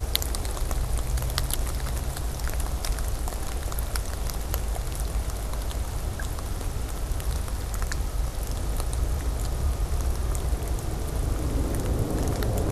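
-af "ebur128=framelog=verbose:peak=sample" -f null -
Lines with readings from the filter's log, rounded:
Integrated loudness:
  I:         -30.2 LUFS
  Threshold: -40.2 LUFS
Loudness range:
  LRA:         2.6 LU
  Threshold: -50.6 LUFS
  LRA low:   -31.8 LUFS
  LRA high:  -29.2 LUFS
Sample peak:
  Peak:       -2.1 dBFS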